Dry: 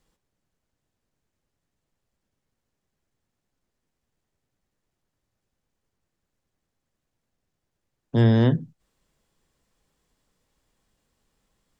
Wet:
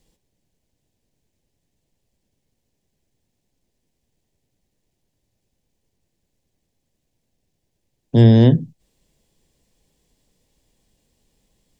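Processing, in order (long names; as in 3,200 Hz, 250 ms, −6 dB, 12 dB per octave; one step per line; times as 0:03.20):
parametric band 1,300 Hz −15 dB 0.84 octaves
level +7.5 dB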